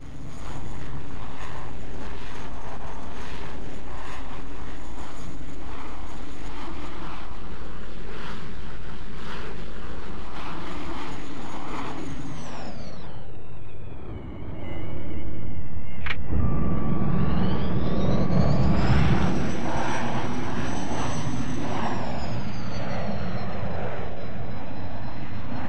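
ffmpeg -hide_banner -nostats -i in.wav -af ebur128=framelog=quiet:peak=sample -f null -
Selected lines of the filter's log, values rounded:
Integrated loudness:
  I:         -31.2 LUFS
  Threshold: -41.3 LUFS
Loudness range:
  LRA:        14.1 LU
  Threshold: -51.0 LUFS
  LRA low:   -38.9 LUFS
  LRA high:  -24.8 LUFS
Sample peak:
  Peak:       -6.5 dBFS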